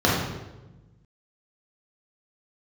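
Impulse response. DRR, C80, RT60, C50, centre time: -6.0 dB, 3.5 dB, 1.1 s, 0.5 dB, 67 ms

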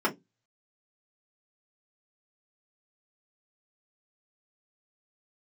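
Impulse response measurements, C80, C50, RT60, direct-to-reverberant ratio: 31.5 dB, 19.0 dB, 0.15 s, -3.5 dB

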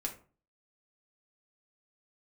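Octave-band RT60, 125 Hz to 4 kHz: 0.50 s, 0.45 s, 0.40 s, 0.40 s, 0.30 s, 0.20 s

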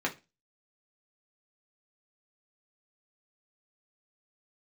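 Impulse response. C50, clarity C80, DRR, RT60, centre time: 16.5 dB, 24.0 dB, -2.5 dB, 0.25 s, 11 ms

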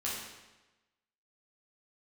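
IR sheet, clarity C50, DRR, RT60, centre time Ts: 0.5 dB, -7.0 dB, 1.1 s, 69 ms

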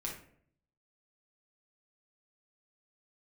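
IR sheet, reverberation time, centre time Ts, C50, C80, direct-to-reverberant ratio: 0.60 s, 30 ms, 5.0 dB, 10.0 dB, -2.5 dB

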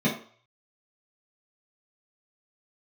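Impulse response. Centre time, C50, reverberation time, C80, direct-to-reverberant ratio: 27 ms, 7.0 dB, 0.45 s, 12.0 dB, -7.5 dB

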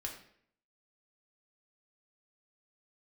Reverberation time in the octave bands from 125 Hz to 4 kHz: 0.70 s, 0.70 s, 0.65 s, 0.60 s, 0.60 s, 0.50 s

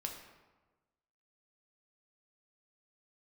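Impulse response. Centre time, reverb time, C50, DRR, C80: 35 ms, 1.2 s, 5.5 dB, 1.5 dB, 7.5 dB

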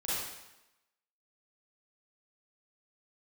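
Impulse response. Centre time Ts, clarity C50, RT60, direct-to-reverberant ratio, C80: 97 ms, -4.5 dB, 0.95 s, -10.5 dB, 0.5 dB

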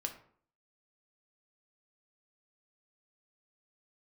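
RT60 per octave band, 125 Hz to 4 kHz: 0.60 s, 0.60 s, 0.55 s, 0.55 s, 0.45 s, 0.30 s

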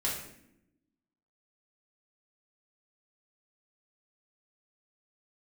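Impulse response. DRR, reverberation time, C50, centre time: -6.0 dB, 0.75 s, 4.0 dB, 43 ms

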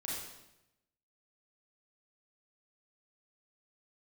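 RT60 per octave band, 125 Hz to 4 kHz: 1.1 s, 1.0 s, 0.95 s, 0.85 s, 0.85 s, 0.80 s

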